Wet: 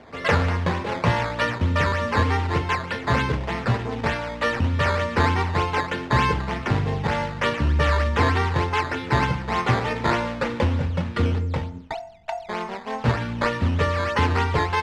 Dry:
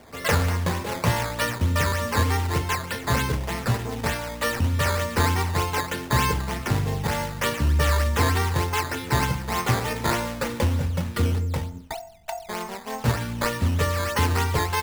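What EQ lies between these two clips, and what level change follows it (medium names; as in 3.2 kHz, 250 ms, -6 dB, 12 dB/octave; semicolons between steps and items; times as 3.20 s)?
low-pass 3.4 kHz 12 dB/octave; bass shelf 84 Hz -5.5 dB; +3.0 dB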